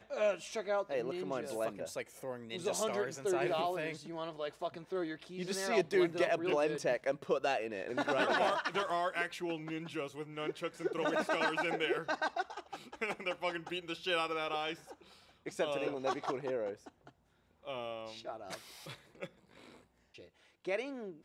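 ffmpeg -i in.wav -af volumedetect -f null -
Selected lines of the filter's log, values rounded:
mean_volume: -36.8 dB
max_volume: -18.9 dB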